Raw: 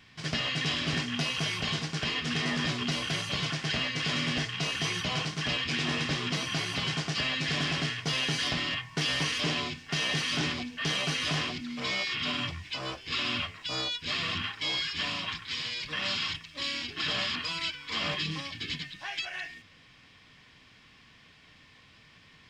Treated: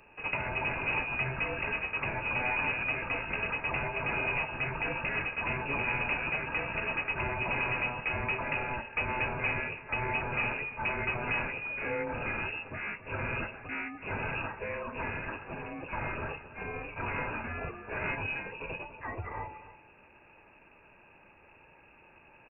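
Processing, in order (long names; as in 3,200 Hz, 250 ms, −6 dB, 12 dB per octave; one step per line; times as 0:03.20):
far-end echo of a speakerphone 280 ms, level −14 dB
voice inversion scrambler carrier 2,700 Hz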